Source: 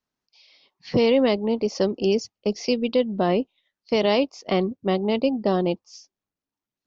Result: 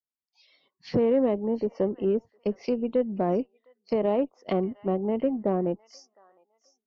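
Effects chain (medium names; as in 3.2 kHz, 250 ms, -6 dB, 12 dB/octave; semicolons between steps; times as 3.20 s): low-pass that closes with the level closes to 980 Hz, closed at -20.5 dBFS; feedback echo behind a high-pass 709 ms, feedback 31%, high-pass 1.6 kHz, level -13.5 dB; spectral noise reduction 18 dB; Chebyshev shaper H 6 -31 dB, 8 -41 dB, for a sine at -9.5 dBFS; trim -3.5 dB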